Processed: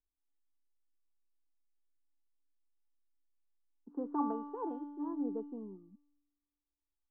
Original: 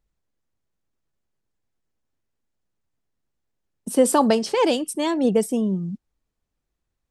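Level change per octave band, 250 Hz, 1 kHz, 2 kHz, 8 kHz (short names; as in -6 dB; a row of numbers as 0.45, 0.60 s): -16.0 dB, -15.5 dB, under -30 dB, under -40 dB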